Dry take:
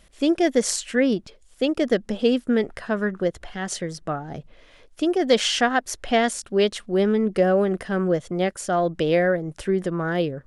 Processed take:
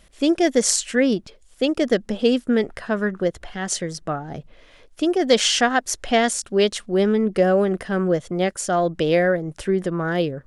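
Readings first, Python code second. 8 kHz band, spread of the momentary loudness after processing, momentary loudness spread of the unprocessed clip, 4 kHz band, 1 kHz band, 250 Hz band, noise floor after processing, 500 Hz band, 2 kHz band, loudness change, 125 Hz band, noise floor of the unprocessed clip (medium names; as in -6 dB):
+6.0 dB, 8 LU, 9 LU, +3.0 dB, +1.5 dB, +1.5 dB, -53 dBFS, +1.5 dB, +2.0 dB, +2.0 dB, +1.5 dB, -55 dBFS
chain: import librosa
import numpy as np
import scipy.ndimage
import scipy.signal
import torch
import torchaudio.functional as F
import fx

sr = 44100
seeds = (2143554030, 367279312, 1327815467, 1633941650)

y = fx.dynamic_eq(x, sr, hz=7000.0, q=0.87, threshold_db=-42.0, ratio=4.0, max_db=5)
y = y * 10.0 ** (1.5 / 20.0)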